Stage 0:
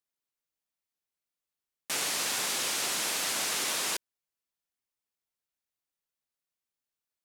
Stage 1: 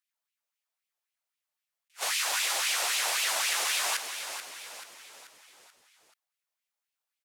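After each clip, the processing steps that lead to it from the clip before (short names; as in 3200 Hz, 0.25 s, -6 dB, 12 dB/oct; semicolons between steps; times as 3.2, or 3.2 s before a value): LFO high-pass sine 3.8 Hz 620–2600 Hz; frequency-shifting echo 0.434 s, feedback 48%, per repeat -55 Hz, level -9 dB; attack slew limiter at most 400 dB/s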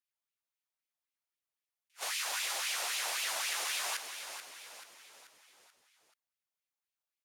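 notch 7800 Hz, Q 25; gain -6.5 dB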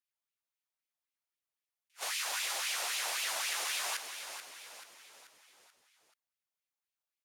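nothing audible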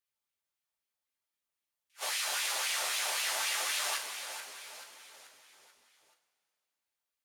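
two-slope reverb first 0.33 s, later 2.6 s, from -17 dB, DRR 1.5 dB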